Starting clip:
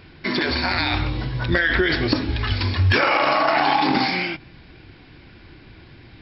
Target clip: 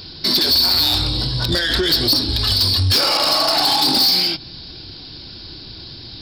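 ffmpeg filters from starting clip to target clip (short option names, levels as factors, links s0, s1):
-filter_complex "[0:a]highshelf=f=3100:t=q:w=3:g=12.5,asplit=2[s0][s1];[s1]acompressor=threshold=0.0631:ratio=6,volume=0.891[s2];[s0][s2]amix=inputs=2:normalize=0,asoftclip=type=tanh:threshold=0.266"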